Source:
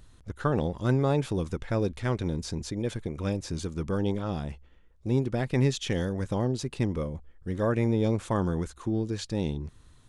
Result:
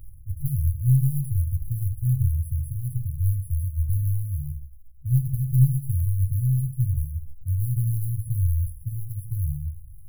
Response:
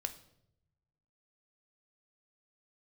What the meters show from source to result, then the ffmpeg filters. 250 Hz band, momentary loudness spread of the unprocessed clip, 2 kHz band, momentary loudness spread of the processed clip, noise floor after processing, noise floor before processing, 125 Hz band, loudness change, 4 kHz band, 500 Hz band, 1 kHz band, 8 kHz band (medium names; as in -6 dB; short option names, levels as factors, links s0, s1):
no reading, 9 LU, under -40 dB, 12 LU, -42 dBFS, -56 dBFS, +8.0 dB, +4.0 dB, under -40 dB, under -40 dB, under -40 dB, 0.0 dB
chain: -filter_complex "[1:a]atrim=start_sample=2205,afade=t=out:st=0.22:d=0.01,atrim=end_sample=10143[s0];[0:a][s0]afir=irnorm=-1:irlink=0,aeval=exprs='0.237*(cos(1*acos(clip(val(0)/0.237,-1,1)))-cos(1*PI/2))+0.0335*(cos(4*acos(clip(val(0)/0.237,-1,1)))-cos(4*PI/2))+0.00237*(cos(5*acos(clip(val(0)/0.237,-1,1)))-cos(5*PI/2))':c=same,acrusher=bits=4:mode=log:mix=0:aa=0.000001,afftfilt=real='re*(1-between(b*sr/4096,150,9800))':imag='im*(1-between(b*sr/4096,150,9800))':win_size=4096:overlap=0.75,volume=2.66"